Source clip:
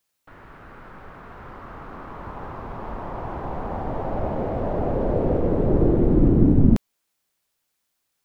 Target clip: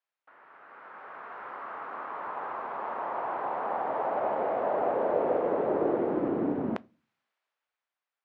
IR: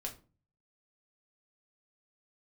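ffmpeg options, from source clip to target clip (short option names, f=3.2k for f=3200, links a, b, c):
-filter_complex "[0:a]highpass=650,lowpass=2.2k,asplit=2[a][b];[1:a]atrim=start_sample=2205[c];[b][c]afir=irnorm=-1:irlink=0,volume=-14dB[d];[a][d]amix=inputs=2:normalize=0,dynaudnorm=f=140:g=13:m=10dB,volume=-7.5dB"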